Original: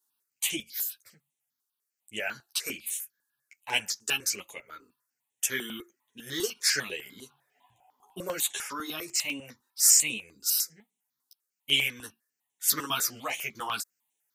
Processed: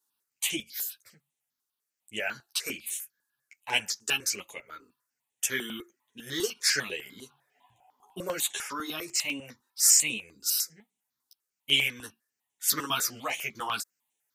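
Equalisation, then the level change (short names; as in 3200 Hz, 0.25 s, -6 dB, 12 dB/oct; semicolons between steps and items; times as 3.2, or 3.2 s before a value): high shelf 9700 Hz -4.5 dB; +1.0 dB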